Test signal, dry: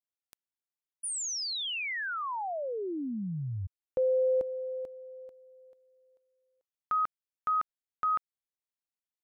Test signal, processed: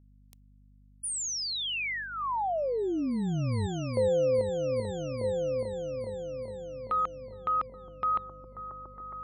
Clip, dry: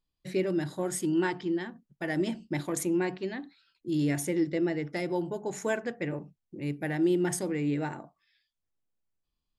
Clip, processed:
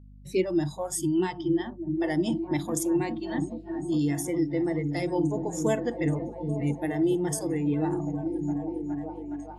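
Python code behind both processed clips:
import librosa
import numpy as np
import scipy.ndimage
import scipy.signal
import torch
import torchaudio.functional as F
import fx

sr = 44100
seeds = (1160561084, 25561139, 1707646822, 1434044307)

p1 = x + fx.echo_opening(x, sr, ms=414, hz=200, octaves=1, feedback_pct=70, wet_db=-3, dry=0)
p2 = fx.noise_reduce_blind(p1, sr, reduce_db=18)
p3 = fx.peak_eq(p2, sr, hz=1500.0, db=-12.5, octaves=0.52)
p4 = fx.add_hum(p3, sr, base_hz=50, snr_db=24)
p5 = fx.rider(p4, sr, range_db=3, speed_s=0.5)
y = F.gain(torch.from_numpy(p5), 4.0).numpy()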